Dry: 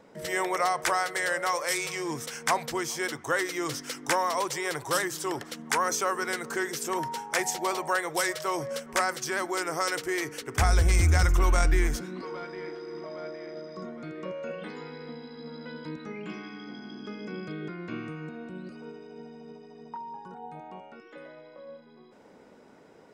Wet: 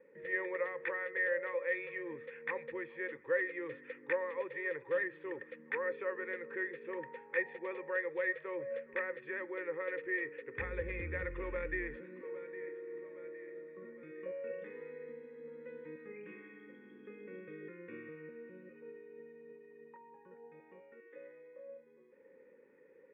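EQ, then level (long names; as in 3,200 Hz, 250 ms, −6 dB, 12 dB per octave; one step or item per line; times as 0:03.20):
formant resonators in series e
Butterworth band-reject 670 Hz, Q 1.8
low-shelf EQ 140 Hz −9.5 dB
+5.0 dB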